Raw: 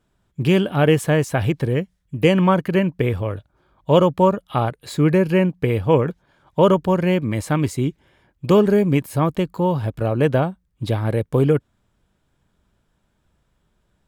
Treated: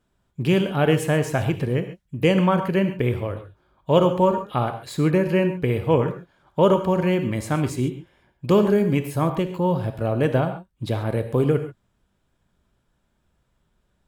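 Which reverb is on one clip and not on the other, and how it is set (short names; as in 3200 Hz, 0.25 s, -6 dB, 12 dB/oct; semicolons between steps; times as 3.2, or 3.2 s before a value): non-linear reverb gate 0.16 s flat, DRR 7.5 dB; gain -3 dB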